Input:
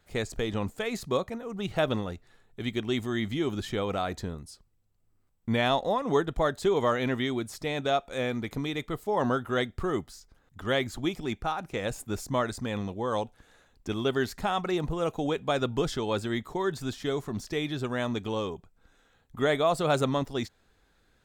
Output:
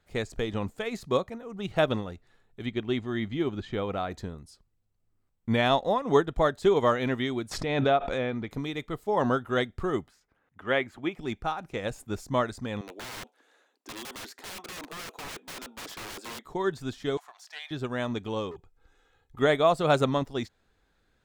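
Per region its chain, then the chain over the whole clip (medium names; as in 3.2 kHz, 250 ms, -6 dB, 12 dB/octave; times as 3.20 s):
2.66–4.11 s: distance through air 120 m + band-stop 5.4 kHz, Q 11 + short-mantissa float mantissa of 6-bit
7.51–8.50 s: low-pass that closes with the level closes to 3 kHz, closed at -23 dBFS + low-pass 4 kHz 6 dB/octave + swell ahead of each attack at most 22 dB/s
10.08–11.19 s: high-pass 250 Hz 6 dB/octave + resonant high shelf 3.3 kHz -9.5 dB, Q 1.5
12.81–16.45 s: steep high-pass 280 Hz + integer overflow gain 30.5 dB
17.17–17.71 s: elliptic high-pass 710 Hz, stop band 60 dB + loudspeaker Doppler distortion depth 0.12 ms
18.51–19.39 s: comb 2.4 ms, depth 64% + overload inside the chain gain 35.5 dB
whole clip: treble shelf 6.7 kHz -5.5 dB; upward expansion 1.5:1, over -35 dBFS; trim +4 dB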